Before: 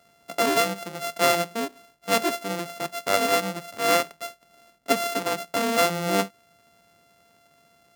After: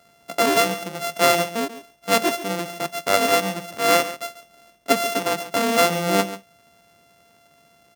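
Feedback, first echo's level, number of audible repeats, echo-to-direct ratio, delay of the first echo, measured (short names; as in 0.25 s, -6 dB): no steady repeat, -14.0 dB, 1, -14.0 dB, 0.139 s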